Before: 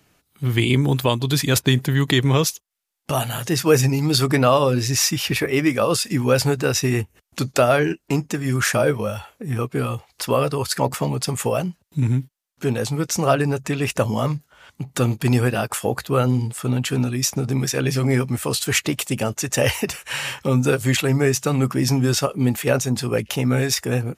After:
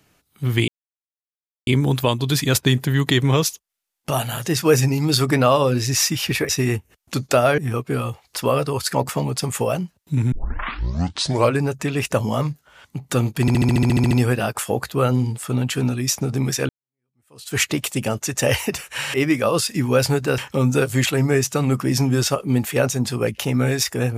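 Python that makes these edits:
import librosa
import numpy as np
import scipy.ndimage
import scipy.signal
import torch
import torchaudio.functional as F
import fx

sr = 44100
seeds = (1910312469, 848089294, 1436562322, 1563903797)

y = fx.edit(x, sr, fx.insert_silence(at_s=0.68, length_s=0.99),
    fx.move(start_s=5.5, length_s=1.24, to_s=20.29),
    fx.cut(start_s=7.83, length_s=1.6),
    fx.tape_start(start_s=12.17, length_s=1.3),
    fx.stutter(start_s=15.26, slice_s=0.07, count=11),
    fx.fade_in_span(start_s=17.84, length_s=0.87, curve='exp'), tone=tone)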